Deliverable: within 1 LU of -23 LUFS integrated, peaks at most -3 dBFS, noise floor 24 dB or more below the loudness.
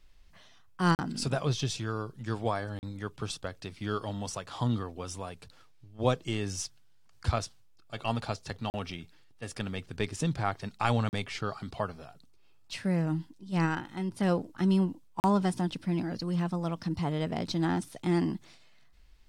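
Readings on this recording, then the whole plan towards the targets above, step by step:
dropouts 5; longest dropout 39 ms; loudness -32.0 LUFS; peak level -10.5 dBFS; loudness target -23.0 LUFS
-> interpolate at 0.95/2.79/8.70/11.09/15.20 s, 39 ms; trim +9 dB; peak limiter -3 dBFS

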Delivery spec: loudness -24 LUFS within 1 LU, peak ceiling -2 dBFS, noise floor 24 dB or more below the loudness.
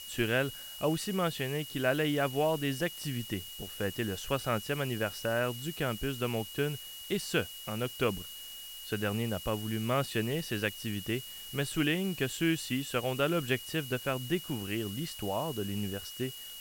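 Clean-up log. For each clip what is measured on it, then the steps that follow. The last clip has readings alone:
steady tone 2.9 kHz; tone level -45 dBFS; noise floor -45 dBFS; noise floor target -57 dBFS; loudness -33.0 LUFS; peak level -15.0 dBFS; loudness target -24.0 LUFS
-> band-stop 2.9 kHz, Q 30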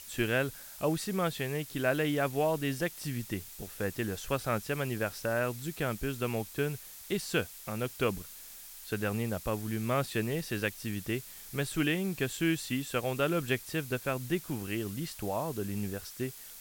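steady tone not found; noise floor -48 dBFS; noise floor target -57 dBFS
-> noise reduction 9 dB, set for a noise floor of -48 dBFS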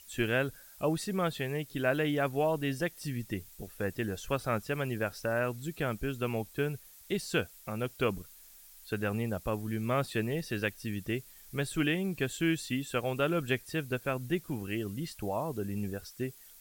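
noise floor -55 dBFS; noise floor target -58 dBFS
-> noise reduction 6 dB, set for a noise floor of -55 dBFS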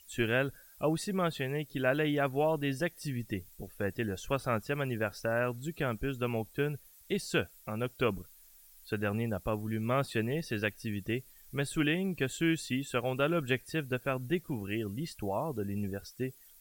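noise floor -58 dBFS; loudness -33.5 LUFS; peak level -15.5 dBFS; loudness target -24.0 LUFS
-> trim +9.5 dB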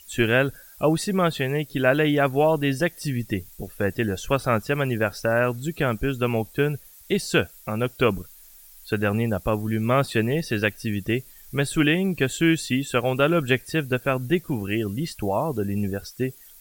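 loudness -24.0 LUFS; peak level -6.0 dBFS; noise floor -49 dBFS

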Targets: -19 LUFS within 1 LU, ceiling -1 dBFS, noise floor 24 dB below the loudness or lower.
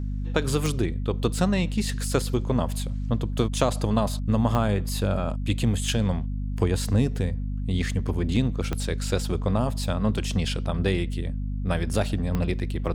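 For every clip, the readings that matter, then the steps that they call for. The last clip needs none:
clicks found 4; hum 50 Hz; highest harmonic 250 Hz; hum level -26 dBFS; loudness -26.0 LUFS; peak level -6.0 dBFS; loudness target -19.0 LUFS
-> de-click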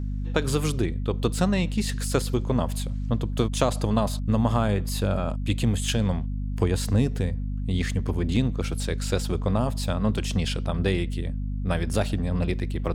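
clicks found 0; hum 50 Hz; highest harmonic 250 Hz; hum level -26 dBFS
-> hum notches 50/100/150/200/250 Hz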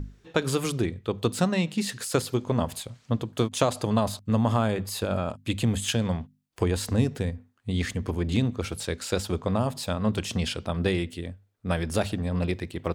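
hum not found; loudness -28.0 LUFS; peak level -7.0 dBFS; loudness target -19.0 LUFS
-> trim +9 dB; peak limiter -1 dBFS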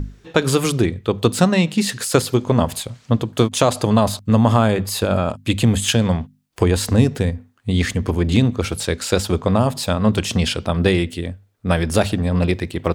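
loudness -19.0 LUFS; peak level -1.0 dBFS; noise floor -54 dBFS

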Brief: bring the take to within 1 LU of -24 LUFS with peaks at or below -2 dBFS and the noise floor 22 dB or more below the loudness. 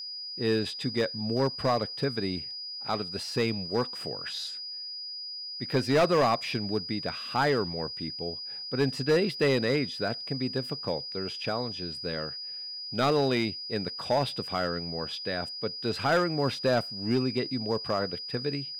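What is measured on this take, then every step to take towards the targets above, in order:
clipped samples 0.7%; clipping level -18.0 dBFS; steady tone 4.9 kHz; tone level -36 dBFS; loudness -29.5 LUFS; peak level -18.0 dBFS; loudness target -24.0 LUFS
-> clip repair -18 dBFS; band-stop 4.9 kHz, Q 30; trim +5.5 dB

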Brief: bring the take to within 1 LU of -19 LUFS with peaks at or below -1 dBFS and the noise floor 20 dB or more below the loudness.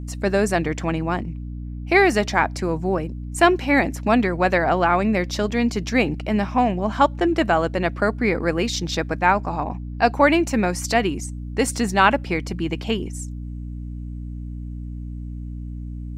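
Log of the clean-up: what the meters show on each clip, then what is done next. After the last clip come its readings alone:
hum 60 Hz; highest harmonic 300 Hz; hum level -29 dBFS; loudness -21.0 LUFS; peak level -2.0 dBFS; loudness target -19.0 LUFS
-> de-hum 60 Hz, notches 5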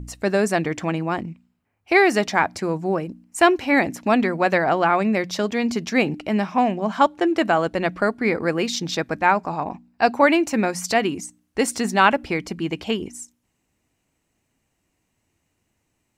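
hum not found; loudness -21.0 LUFS; peak level -2.0 dBFS; loudness target -19.0 LUFS
-> trim +2 dB; peak limiter -1 dBFS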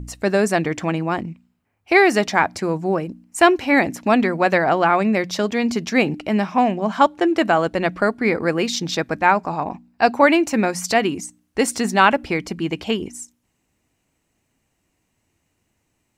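loudness -19.0 LUFS; peak level -1.0 dBFS; noise floor -71 dBFS

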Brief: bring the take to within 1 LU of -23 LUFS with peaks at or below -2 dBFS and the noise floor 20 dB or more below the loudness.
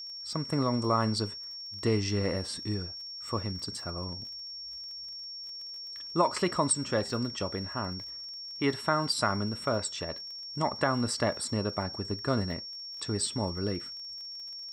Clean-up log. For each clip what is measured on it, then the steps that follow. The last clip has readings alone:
tick rate 33 per s; steady tone 5.5 kHz; tone level -39 dBFS; loudness -32.0 LUFS; peak level -12.0 dBFS; loudness target -23.0 LUFS
-> de-click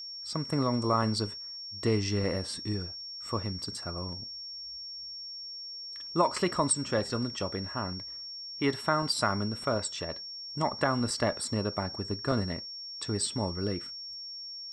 tick rate 0.068 per s; steady tone 5.5 kHz; tone level -39 dBFS
-> band-stop 5.5 kHz, Q 30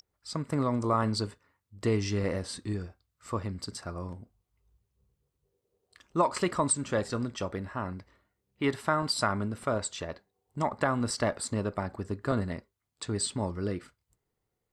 steady tone not found; loudness -31.5 LUFS; peak level -12.5 dBFS; loudness target -23.0 LUFS
-> trim +8.5 dB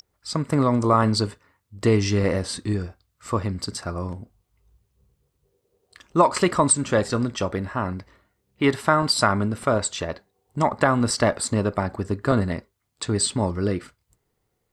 loudness -23.0 LUFS; peak level -4.0 dBFS; noise floor -75 dBFS

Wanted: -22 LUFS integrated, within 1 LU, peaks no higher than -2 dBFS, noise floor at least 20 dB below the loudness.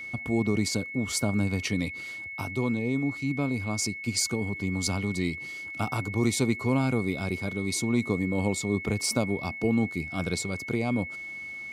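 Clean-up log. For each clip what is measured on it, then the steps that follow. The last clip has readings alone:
tick rate 32 per s; steady tone 2.2 kHz; tone level -36 dBFS; loudness -28.5 LUFS; peak level -11.5 dBFS; loudness target -22.0 LUFS
-> de-click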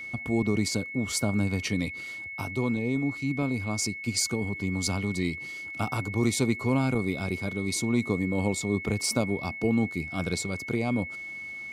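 tick rate 0.17 per s; steady tone 2.2 kHz; tone level -36 dBFS
-> band-stop 2.2 kHz, Q 30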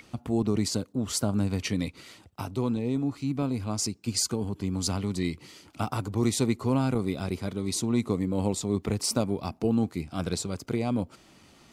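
steady tone not found; loudness -29.0 LUFS; peak level -12.5 dBFS; loudness target -22.0 LUFS
-> trim +7 dB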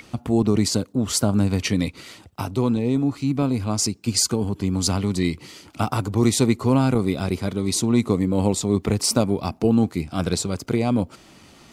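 loudness -22.0 LUFS; peak level -5.5 dBFS; noise floor -50 dBFS

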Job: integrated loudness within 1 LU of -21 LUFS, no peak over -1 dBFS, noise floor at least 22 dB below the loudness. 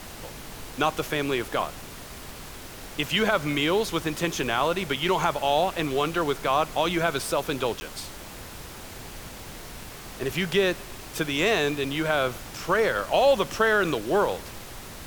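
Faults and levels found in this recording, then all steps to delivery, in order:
dropouts 1; longest dropout 10 ms; noise floor -41 dBFS; noise floor target -48 dBFS; loudness -25.5 LUFS; peak level -9.0 dBFS; loudness target -21.0 LUFS
-> interpolate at 7.80 s, 10 ms; noise print and reduce 7 dB; trim +4.5 dB

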